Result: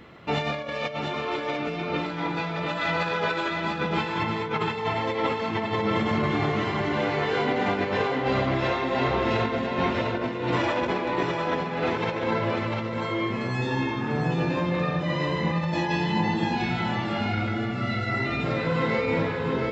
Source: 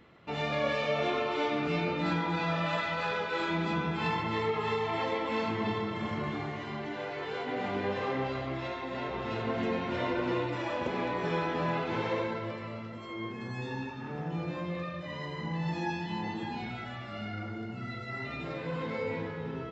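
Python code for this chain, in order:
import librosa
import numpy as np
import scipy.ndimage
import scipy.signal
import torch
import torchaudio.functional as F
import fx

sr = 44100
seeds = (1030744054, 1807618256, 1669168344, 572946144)

p1 = fx.over_compress(x, sr, threshold_db=-34.0, ratio=-0.5)
p2 = p1 + fx.echo_single(p1, sr, ms=697, db=-5.0, dry=0)
y = F.gain(torch.from_numpy(p2), 8.0).numpy()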